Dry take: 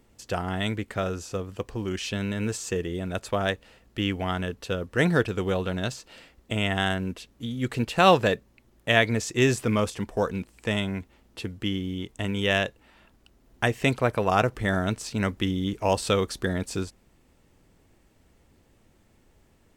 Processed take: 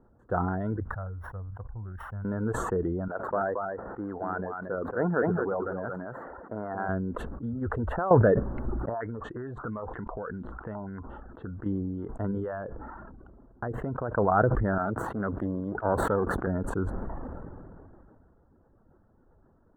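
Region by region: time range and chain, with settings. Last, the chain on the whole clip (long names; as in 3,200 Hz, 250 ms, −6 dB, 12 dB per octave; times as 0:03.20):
0:00.80–0:02.25: samples sorted by size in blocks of 8 samples + drawn EQ curve 100 Hz 0 dB, 320 Hz −24 dB, 780 Hz −10 dB
0:03.08–0:06.89: running median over 15 samples + high-pass filter 490 Hz 6 dB per octave + single-tap delay 228 ms −6.5 dB
0:07.53–0:08.11: low shelf with overshoot 110 Hz +6.5 dB, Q 3 + downward compressor 8 to 1, threshold −24 dBFS
0:08.89–0:11.66: downward compressor 20 to 1, threshold −32 dBFS + low-pass on a step sequencer 8.6 Hz 910–3,800 Hz
0:12.31–0:14.15: high-shelf EQ 3,700 Hz −6.5 dB + downward compressor 10 to 1, threshold −27 dBFS
0:14.78–0:16.47: gain on one half-wave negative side −12 dB + high-pass filter 72 Hz
whole clip: reverb reduction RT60 0.62 s; elliptic low-pass filter 1,500 Hz, stop band 40 dB; level that may fall only so fast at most 22 dB per second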